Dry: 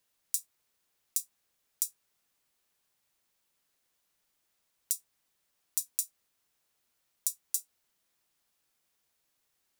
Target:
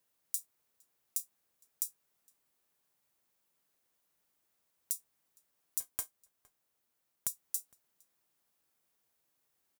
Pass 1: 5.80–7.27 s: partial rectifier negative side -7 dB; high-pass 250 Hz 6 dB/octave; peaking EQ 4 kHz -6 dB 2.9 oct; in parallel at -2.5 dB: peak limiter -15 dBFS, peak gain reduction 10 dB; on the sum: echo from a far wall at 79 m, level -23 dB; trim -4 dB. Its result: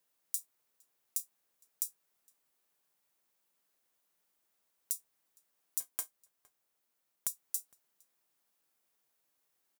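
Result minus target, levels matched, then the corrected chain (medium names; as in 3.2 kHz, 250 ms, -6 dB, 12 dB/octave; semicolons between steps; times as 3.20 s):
125 Hz band -6.0 dB
5.80–7.27 s: partial rectifier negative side -7 dB; high-pass 78 Hz 6 dB/octave; peaking EQ 4 kHz -6 dB 2.9 oct; in parallel at -2.5 dB: peak limiter -15 dBFS, peak gain reduction 10 dB; on the sum: echo from a far wall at 79 m, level -23 dB; trim -4 dB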